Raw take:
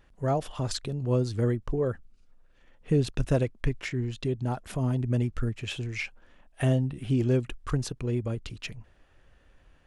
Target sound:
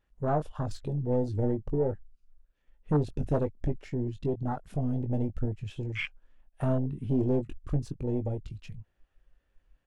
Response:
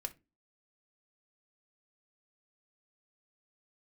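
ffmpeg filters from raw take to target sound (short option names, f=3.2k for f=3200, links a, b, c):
-filter_complex "[0:a]aeval=exprs='0.224*(cos(1*acos(clip(val(0)/0.224,-1,1)))-cos(1*PI/2))+0.0398*(cos(4*acos(clip(val(0)/0.224,-1,1)))-cos(4*PI/2))+0.0501*(cos(5*acos(clip(val(0)/0.224,-1,1)))-cos(5*PI/2))+0.0447*(cos(6*acos(clip(val(0)/0.224,-1,1)))-cos(6*PI/2))':c=same,asplit=2[a][b];[b]adelay=20,volume=-8dB[c];[a][c]amix=inputs=2:normalize=0,afwtdn=0.0501,volume=-5.5dB"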